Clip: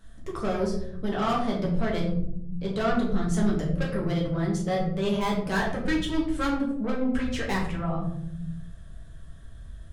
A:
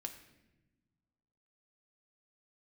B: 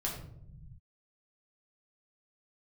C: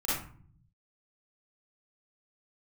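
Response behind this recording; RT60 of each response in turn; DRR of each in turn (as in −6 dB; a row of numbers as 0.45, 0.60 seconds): B; 1.1, 0.75, 0.50 seconds; 4.5, −3.5, −10.5 decibels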